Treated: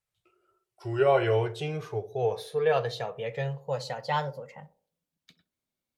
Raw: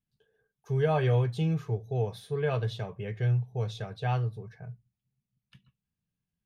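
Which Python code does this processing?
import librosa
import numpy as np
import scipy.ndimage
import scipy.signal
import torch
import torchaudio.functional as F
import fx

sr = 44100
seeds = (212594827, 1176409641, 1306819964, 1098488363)

y = fx.speed_glide(x, sr, from_pct=78, to_pct=138)
y = fx.low_shelf_res(y, sr, hz=350.0, db=-10.5, q=1.5)
y = fx.echo_banded(y, sr, ms=64, feedback_pct=51, hz=400.0, wet_db=-13.0)
y = F.gain(torch.from_numpy(y), 4.5).numpy()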